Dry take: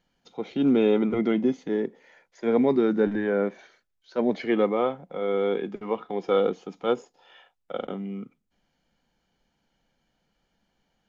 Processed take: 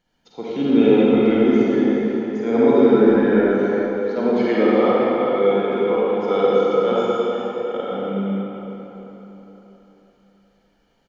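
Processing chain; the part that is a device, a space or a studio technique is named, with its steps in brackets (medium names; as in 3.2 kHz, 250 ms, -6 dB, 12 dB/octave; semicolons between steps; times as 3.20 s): cave (delay 370 ms -12.5 dB; reverberation RT60 4.0 s, pre-delay 41 ms, DRR -7.5 dB)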